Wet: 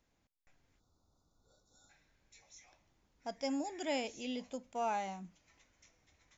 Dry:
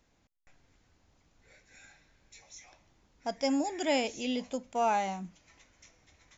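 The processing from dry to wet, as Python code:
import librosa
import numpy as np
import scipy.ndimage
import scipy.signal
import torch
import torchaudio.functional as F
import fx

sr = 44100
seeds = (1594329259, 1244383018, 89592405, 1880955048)

y = fx.spec_erase(x, sr, start_s=0.8, length_s=1.1, low_hz=1500.0, high_hz=3400.0)
y = y * librosa.db_to_amplitude(-7.5)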